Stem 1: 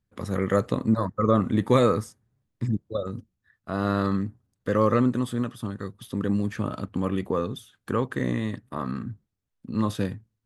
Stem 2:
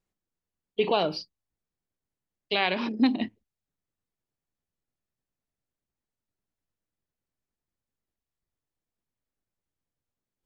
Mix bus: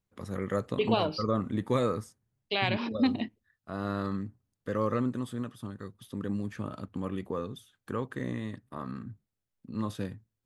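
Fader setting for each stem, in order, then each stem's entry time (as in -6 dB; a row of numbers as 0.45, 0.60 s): -8.0, -3.5 dB; 0.00, 0.00 s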